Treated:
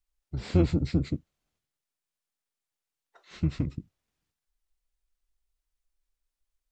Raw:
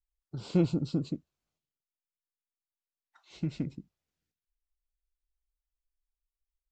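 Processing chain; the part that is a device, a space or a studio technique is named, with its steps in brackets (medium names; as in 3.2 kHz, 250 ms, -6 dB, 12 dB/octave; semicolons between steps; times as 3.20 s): octave pedal (harmony voices -12 st -1 dB); trim +2.5 dB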